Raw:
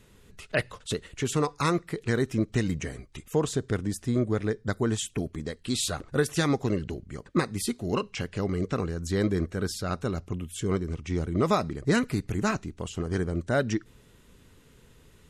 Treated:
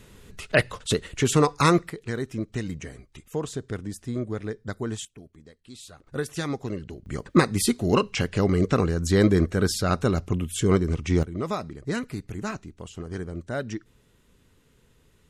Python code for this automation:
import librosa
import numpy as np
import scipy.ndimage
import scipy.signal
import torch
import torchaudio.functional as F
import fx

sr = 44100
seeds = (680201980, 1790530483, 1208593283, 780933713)

y = fx.gain(x, sr, db=fx.steps((0.0, 6.5), (1.9, -4.0), (5.05, -16.0), (6.07, -4.5), (7.06, 7.0), (11.23, -5.0)))